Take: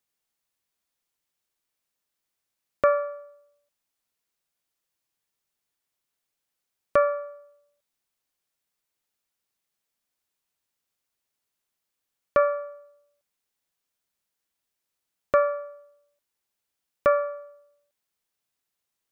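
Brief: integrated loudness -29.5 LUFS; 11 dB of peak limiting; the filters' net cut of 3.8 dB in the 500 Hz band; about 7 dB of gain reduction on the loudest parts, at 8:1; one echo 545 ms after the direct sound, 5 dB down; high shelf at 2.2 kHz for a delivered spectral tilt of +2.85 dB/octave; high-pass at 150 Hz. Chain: high-pass 150 Hz; peaking EQ 500 Hz -4 dB; treble shelf 2.2 kHz -6.5 dB; compression 8:1, threshold -25 dBFS; peak limiter -24.5 dBFS; delay 545 ms -5 dB; trim +9 dB

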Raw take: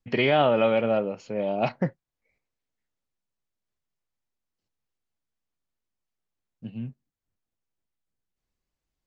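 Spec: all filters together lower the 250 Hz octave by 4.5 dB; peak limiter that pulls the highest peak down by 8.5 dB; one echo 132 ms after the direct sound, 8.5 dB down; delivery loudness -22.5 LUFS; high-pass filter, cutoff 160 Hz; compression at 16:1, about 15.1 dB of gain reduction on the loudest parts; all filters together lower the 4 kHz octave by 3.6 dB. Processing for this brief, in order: high-pass 160 Hz; peaking EQ 250 Hz -4.5 dB; peaking EQ 4 kHz -5.5 dB; compression 16:1, threshold -33 dBFS; peak limiter -30 dBFS; delay 132 ms -8.5 dB; trim +18 dB

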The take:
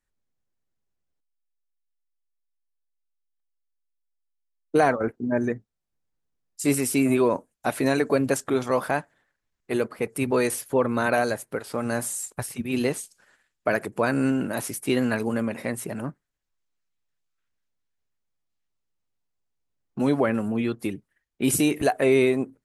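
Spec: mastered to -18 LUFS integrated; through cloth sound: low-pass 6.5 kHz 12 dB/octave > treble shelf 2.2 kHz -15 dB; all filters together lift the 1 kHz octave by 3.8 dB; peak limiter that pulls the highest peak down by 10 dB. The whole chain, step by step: peaking EQ 1 kHz +8.5 dB; peak limiter -13 dBFS; low-pass 6.5 kHz 12 dB/octave; treble shelf 2.2 kHz -15 dB; trim +9 dB

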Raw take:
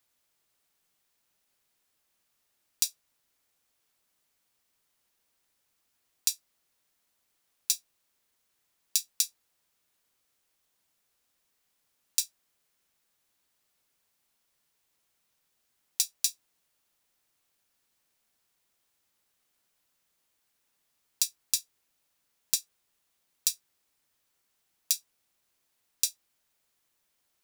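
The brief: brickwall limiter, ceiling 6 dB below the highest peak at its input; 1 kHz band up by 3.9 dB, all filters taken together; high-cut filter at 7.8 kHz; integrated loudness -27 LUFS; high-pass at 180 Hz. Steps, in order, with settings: high-pass 180 Hz; low-pass 7.8 kHz; peaking EQ 1 kHz +5 dB; trim +11 dB; peak limiter -2 dBFS

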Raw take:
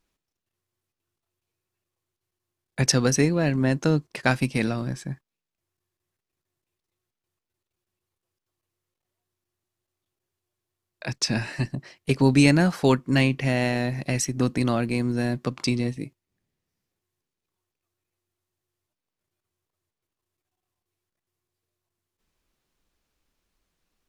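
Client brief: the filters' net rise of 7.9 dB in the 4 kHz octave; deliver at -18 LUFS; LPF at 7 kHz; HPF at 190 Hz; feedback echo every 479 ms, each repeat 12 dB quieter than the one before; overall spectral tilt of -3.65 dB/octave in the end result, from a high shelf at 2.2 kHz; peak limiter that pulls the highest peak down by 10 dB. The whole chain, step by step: high-pass 190 Hz; low-pass 7 kHz; treble shelf 2.2 kHz +4.5 dB; peaking EQ 4 kHz +6.5 dB; peak limiter -10.5 dBFS; feedback delay 479 ms, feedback 25%, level -12 dB; trim +7 dB

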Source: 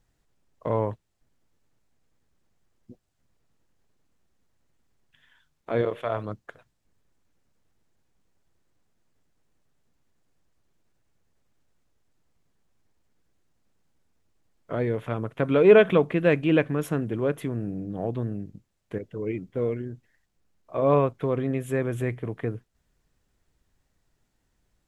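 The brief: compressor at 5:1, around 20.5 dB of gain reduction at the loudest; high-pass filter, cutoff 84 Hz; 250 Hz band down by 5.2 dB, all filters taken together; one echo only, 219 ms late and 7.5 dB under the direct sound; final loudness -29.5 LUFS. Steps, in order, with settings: high-pass 84 Hz; peaking EQ 250 Hz -7.5 dB; compression 5:1, threshold -36 dBFS; delay 219 ms -7.5 dB; trim +11 dB

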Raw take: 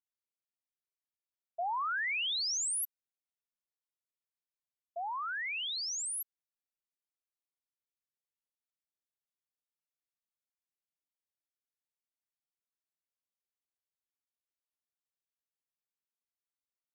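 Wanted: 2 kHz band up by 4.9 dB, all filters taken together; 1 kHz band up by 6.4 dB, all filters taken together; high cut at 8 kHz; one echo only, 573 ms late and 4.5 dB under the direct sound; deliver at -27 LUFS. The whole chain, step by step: low-pass 8 kHz; peaking EQ 1 kHz +7 dB; peaking EQ 2 kHz +4 dB; delay 573 ms -4.5 dB; trim +3 dB

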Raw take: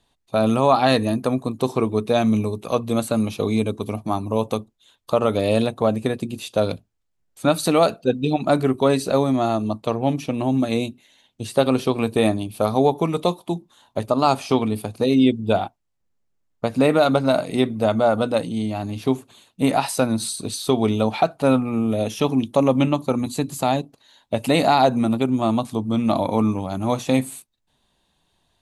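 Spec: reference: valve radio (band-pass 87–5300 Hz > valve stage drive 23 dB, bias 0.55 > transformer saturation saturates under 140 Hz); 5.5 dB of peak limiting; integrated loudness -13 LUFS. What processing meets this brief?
peak limiter -9 dBFS; band-pass 87–5300 Hz; valve stage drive 23 dB, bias 0.55; transformer saturation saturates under 140 Hz; trim +17.5 dB

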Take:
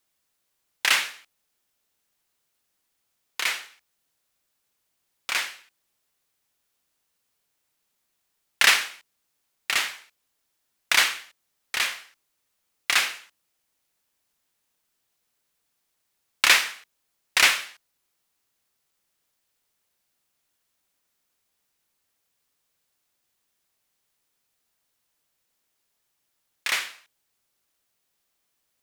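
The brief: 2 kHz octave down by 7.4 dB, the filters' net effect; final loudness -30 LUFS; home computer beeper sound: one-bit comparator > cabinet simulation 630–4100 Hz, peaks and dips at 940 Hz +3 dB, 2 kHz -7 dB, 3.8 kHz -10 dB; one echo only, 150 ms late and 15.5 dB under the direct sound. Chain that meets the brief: peaking EQ 2 kHz -5 dB; delay 150 ms -15.5 dB; one-bit comparator; cabinet simulation 630–4100 Hz, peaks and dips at 940 Hz +3 dB, 2 kHz -7 dB, 3.8 kHz -10 dB; trim +12 dB

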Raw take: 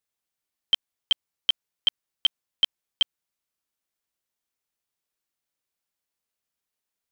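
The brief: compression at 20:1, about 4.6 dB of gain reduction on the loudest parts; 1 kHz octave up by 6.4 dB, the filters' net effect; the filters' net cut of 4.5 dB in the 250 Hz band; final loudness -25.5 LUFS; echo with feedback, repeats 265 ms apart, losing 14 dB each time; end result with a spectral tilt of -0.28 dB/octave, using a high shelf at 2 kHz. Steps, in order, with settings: peaking EQ 250 Hz -7 dB; peaking EQ 1 kHz +6.5 dB; treble shelf 2 kHz +7 dB; compression 20:1, threshold -16 dBFS; feedback delay 265 ms, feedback 20%, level -14 dB; trim -0.5 dB

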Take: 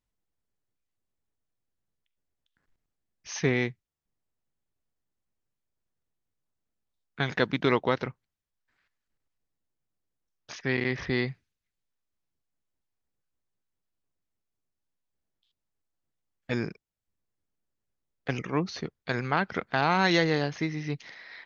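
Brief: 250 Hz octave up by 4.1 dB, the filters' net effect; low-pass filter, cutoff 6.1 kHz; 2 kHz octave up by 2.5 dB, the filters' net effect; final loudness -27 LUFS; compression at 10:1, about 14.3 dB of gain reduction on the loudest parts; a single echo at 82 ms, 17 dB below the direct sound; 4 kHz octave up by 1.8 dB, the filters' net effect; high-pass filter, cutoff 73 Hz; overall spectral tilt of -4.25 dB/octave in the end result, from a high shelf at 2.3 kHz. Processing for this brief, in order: high-pass 73 Hz; low-pass 6.1 kHz; peaking EQ 250 Hz +5.5 dB; peaking EQ 2 kHz +5 dB; treble shelf 2.3 kHz -8 dB; peaking EQ 4 kHz +8 dB; compression 10:1, threshold -31 dBFS; delay 82 ms -17 dB; trim +10.5 dB

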